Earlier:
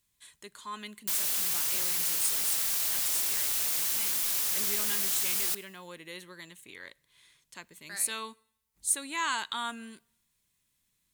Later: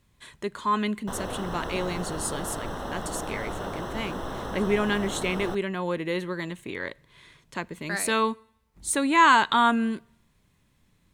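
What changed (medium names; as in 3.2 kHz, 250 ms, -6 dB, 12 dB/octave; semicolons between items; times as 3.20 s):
background: add boxcar filter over 19 samples; master: remove pre-emphasis filter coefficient 0.9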